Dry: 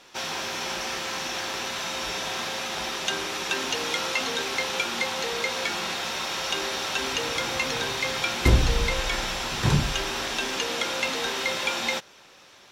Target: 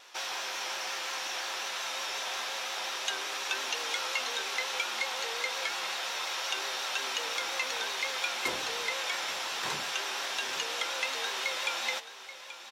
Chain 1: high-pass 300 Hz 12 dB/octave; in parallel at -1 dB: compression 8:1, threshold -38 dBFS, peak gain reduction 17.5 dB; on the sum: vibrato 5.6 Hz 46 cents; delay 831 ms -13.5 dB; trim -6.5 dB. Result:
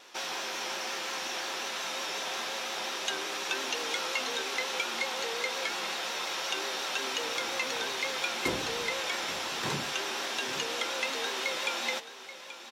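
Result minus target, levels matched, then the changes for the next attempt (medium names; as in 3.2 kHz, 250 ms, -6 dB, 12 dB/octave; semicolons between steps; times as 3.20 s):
250 Hz band +9.0 dB
change: high-pass 610 Hz 12 dB/octave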